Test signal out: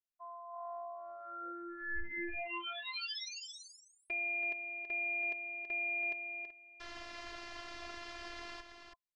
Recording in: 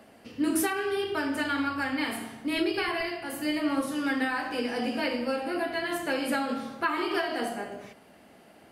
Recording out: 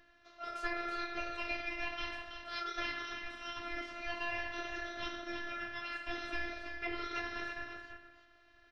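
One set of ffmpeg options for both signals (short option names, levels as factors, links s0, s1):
-filter_complex "[0:a]highshelf=f=3100:g=7.5,afreqshift=60,highpass=f=140:w=0.5412,highpass=f=140:w=1.3066,equalizer=f=160:t=q:w=4:g=-7,equalizer=f=280:t=q:w=4:g=-5,equalizer=f=550:t=q:w=4:g=-6,equalizer=f=930:t=q:w=4:g=7,equalizer=f=2700:t=q:w=4:g=-6,lowpass=f=4100:w=0.5412,lowpass=f=4100:w=1.3066,aeval=exprs='val(0)*sin(2*PI*910*n/s)':c=same,asplit=2[s0][s1];[s1]aecho=0:1:328:0.422[s2];[s0][s2]amix=inputs=2:normalize=0,afftfilt=real='hypot(re,im)*cos(PI*b)':imag='0':win_size=512:overlap=0.75,volume=0.631"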